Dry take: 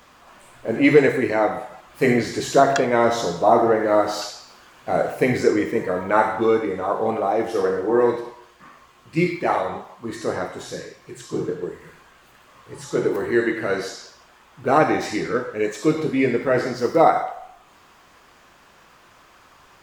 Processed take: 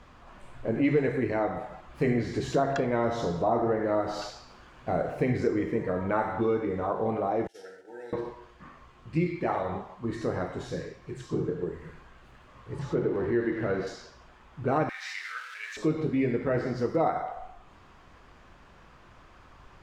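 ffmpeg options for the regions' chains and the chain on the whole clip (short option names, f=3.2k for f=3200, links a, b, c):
-filter_complex "[0:a]asettb=1/sr,asplit=3[a][b][c];[a]atrim=end=7.474[d];[b]atrim=start=7.47:end=8.13,asetpts=PTS-STARTPTS,afade=t=in:d=0.004:c=qsin,afade=t=out:st=0.656:d=0.004:c=qsin,agate=range=-33dB:threshold=-23dB:ratio=3:release=100:detection=peak,asuperstop=centerf=1100:order=20:qfactor=3,aderivative[e];[c]atrim=start=8.126[f];[d][e]acrossfade=d=0.004:c1=hsin:c2=qsin[g];[g][f]acrossfade=d=0.004:c1=qsin:c2=hsin,asettb=1/sr,asplit=3[h][i][j];[h]atrim=end=12.794[k];[i]atrim=start=12.79:end=13.87,asetpts=PTS-STARTPTS,afade=t=in:d=0.004:c=qsin,afade=t=out:st=1.076:d=0.004:c=qsin,aeval=exprs='val(0)+0.5*0.0237*sgn(val(0))':c=same,highpass=f=490:p=1,aemphasis=mode=reproduction:type=riaa[l];[j]atrim=start=13.866[m];[k][l]acrossfade=d=0.004:c1=hsin:c2=qsin[n];[n][m]acrossfade=d=0.004:c1=qsin:c2=hsin,asettb=1/sr,asplit=3[o][p][q];[o]atrim=end=14.894[r];[p]atrim=start=14.89:end=15.77,asetpts=PTS-STARTPTS,afade=t=in:d=0.004:c=qsin,afade=t=out:st=0.876:d=0.004:c=qsin,aeval=exprs='val(0)+0.5*0.0355*sgn(val(0))':c=same,acrossover=split=6300[s][t];[t]acompressor=threshold=-41dB:ratio=4:attack=1:release=60[u];[s][u]amix=inputs=2:normalize=0,highpass=f=1.5k:w=0.5412,highpass=f=1.5k:w=1.3066[v];[q]atrim=start=15.766[w];[r][v]acrossfade=d=0.004:c1=hsin:c2=qsin[x];[x][w]acrossfade=d=0.004:c1=qsin:c2=hsin,aemphasis=mode=reproduction:type=bsi,acompressor=threshold=-24dB:ratio=2,volume=-4dB"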